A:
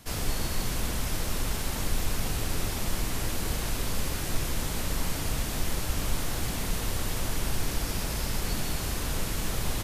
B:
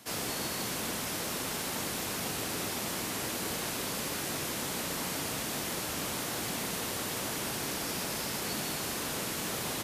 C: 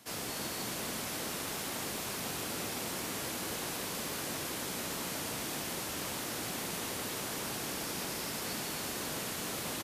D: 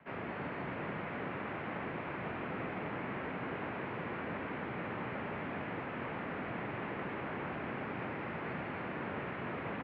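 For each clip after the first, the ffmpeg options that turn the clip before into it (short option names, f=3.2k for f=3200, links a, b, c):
-af "highpass=200"
-filter_complex "[0:a]asplit=9[a][b][c][d][e][f][g][h][i];[b]adelay=272,afreqshift=45,volume=-7.5dB[j];[c]adelay=544,afreqshift=90,volume=-11.8dB[k];[d]adelay=816,afreqshift=135,volume=-16.1dB[l];[e]adelay=1088,afreqshift=180,volume=-20.4dB[m];[f]adelay=1360,afreqshift=225,volume=-24.7dB[n];[g]adelay=1632,afreqshift=270,volume=-29dB[o];[h]adelay=1904,afreqshift=315,volume=-33.3dB[p];[i]adelay=2176,afreqshift=360,volume=-37.6dB[q];[a][j][k][l][m][n][o][p][q]amix=inputs=9:normalize=0,volume=-4dB"
-af "highpass=f=160:t=q:w=0.5412,highpass=f=160:t=q:w=1.307,lowpass=f=2.4k:t=q:w=0.5176,lowpass=f=2.4k:t=q:w=0.7071,lowpass=f=2.4k:t=q:w=1.932,afreqshift=-59,volume=1.5dB"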